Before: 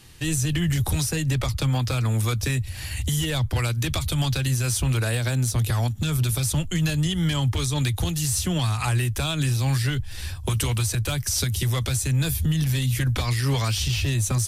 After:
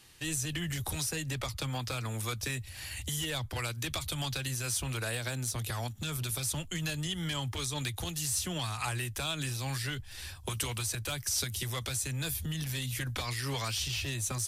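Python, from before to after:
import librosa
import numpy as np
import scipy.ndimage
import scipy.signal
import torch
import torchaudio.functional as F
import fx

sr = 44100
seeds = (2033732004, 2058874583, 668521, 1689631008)

y = fx.low_shelf(x, sr, hz=280.0, db=-10.0)
y = y * 10.0 ** (-6.0 / 20.0)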